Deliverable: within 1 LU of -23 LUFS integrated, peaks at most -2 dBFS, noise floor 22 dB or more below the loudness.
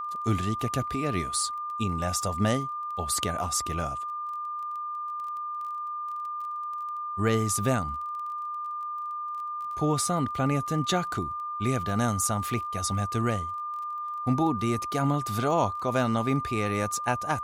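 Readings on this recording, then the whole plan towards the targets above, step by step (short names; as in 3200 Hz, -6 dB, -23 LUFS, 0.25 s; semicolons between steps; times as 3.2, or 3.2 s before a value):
ticks 19/s; steady tone 1200 Hz; tone level -31 dBFS; loudness -29.0 LUFS; peak -10.5 dBFS; loudness target -23.0 LUFS
-> de-click; notch 1200 Hz, Q 30; gain +6 dB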